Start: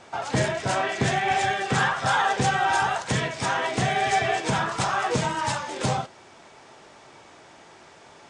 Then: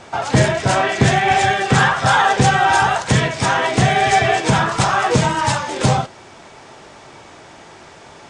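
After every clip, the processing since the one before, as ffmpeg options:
ffmpeg -i in.wav -af "lowshelf=frequency=140:gain=6.5,volume=8dB" out.wav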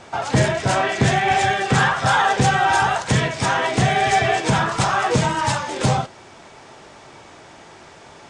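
ffmpeg -i in.wav -af "asoftclip=type=tanh:threshold=-2dB,volume=-2.5dB" out.wav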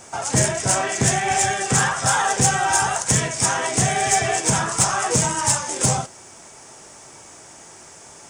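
ffmpeg -i in.wav -af "aexciter=amount=5.7:drive=7.5:freq=5700,volume=-3.5dB" out.wav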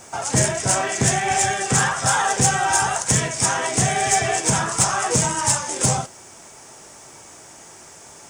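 ffmpeg -i in.wav -af "acrusher=bits=8:mix=0:aa=0.5" out.wav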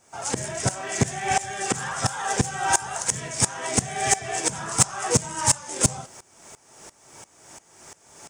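ffmpeg -i in.wav -af "aeval=exprs='val(0)*pow(10,-20*if(lt(mod(-2.9*n/s,1),2*abs(-2.9)/1000),1-mod(-2.9*n/s,1)/(2*abs(-2.9)/1000),(mod(-2.9*n/s,1)-2*abs(-2.9)/1000)/(1-2*abs(-2.9)/1000))/20)':channel_layout=same,volume=1.5dB" out.wav

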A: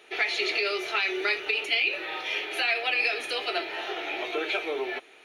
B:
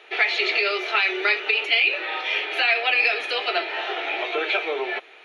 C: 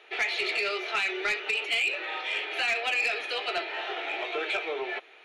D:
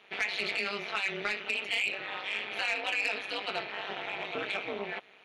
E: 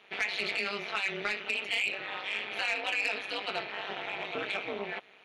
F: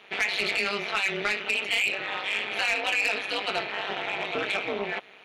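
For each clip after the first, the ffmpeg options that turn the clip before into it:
ffmpeg -i in.wav -filter_complex "[0:a]acrossover=split=370 4700:gain=0.141 1 0.141[link_01][link_02][link_03];[link_01][link_02][link_03]amix=inputs=3:normalize=0,volume=6.5dB" out.wav
ffmpeg -i in.wav -af "asoftclip=type=tanh:threshold=-14dB,volume=-5.5dB" out.wav
ffmpeg -i in.wav -af "tremolo=f=200:d=0.919" out.wav
ffmpeg -i in.wav -af anull out.wav
ffmpeg -i in.wav -af "asoftclip=type=tanh:threshold=-22dB,volume=6.5dB" out.wav

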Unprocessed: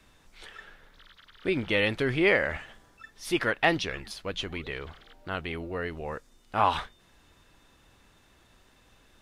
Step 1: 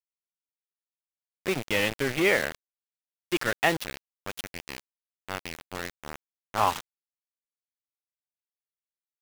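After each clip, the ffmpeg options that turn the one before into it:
ffmpeg -i in.wav -filter_complex "[0:a]highpass=frequency=87:width=0.5412,highpass=frequency=87:width=1.3066,asplit=2[link_01][link_02];[link_02]adelay=419,lowpass=frequency=2000:poles=1,volume=-19.5dB,asplit=2[link_03][link_04];[link_04]adelay=419,lowpass=frequency=2000:poles=1,volume=0.5,asplit=2[link_05][link_06];[link_06]adelay=419,lowpass=frequency=2000:poles=1,volume=0.5,asplit=2[link_07][link_08];[link_08]adelay=419,lowpass=frequency=2000:poles=1,volume=0.5[link_09];[link_01][link_03][link_05][link_07][link_09]amix=inputs=5:normalize=0,aeval=exprs='val(0)*gte(abs(val(0)),0.0473)':channel_layout=same" out.wav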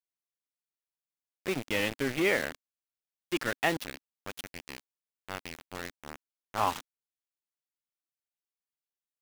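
ffmpeg -i in.wav -af "adynamicequalizer=threshold=0.00708:dfrequency=270:dqfactor=2.9:tfrequency=270:tqfactor=2.9:attack=5:release=100:ratio=0.375:range=2.5:mode=boostabove:tftype=bell,volume=-4.5dB" out.wav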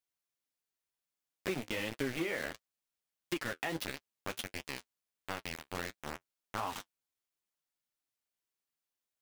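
ffmpeg -i in.wav -af "alimiter=limit=-22dB:level=0:latency=1:release=156,acompressor=threshold=-35dB:ratio=6,flanger=delay=6.2:depth=8.5:regen=-37:speed=1.5:shape=triangular,volume=7dB" out.wav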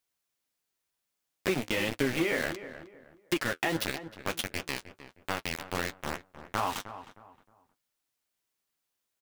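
ffmpeg -i in.wav -filter_complex "[0:a]asplit=2[link_01][link_02];[link_02]adelay=311,lowpass=frequency=1700:poles=1,volume=-12dB,asplit=2[link_03][link_04];[link_04]adelay=311,lowpass=frequency=1700:poles=1,volume=0.32,asplit=2[link_05][link_06];[link_06]adelay=311,lowpass=frequency=1700:poles=1,volume=0.32[link_07];[link_01][link_03][link_05][link_07]amix=inputs=4:normalize=0,volume=7dB" out.wav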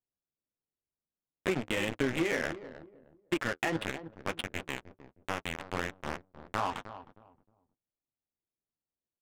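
ffmpeg -i in.wav -af "aresample=8000,acrusher=bits=4:mode=log:mix=0:aa=0.000001,aresample=44100,adynamicsmooth=sensitivity=6:basefreq=530,volume=-1.5dB" out.wav

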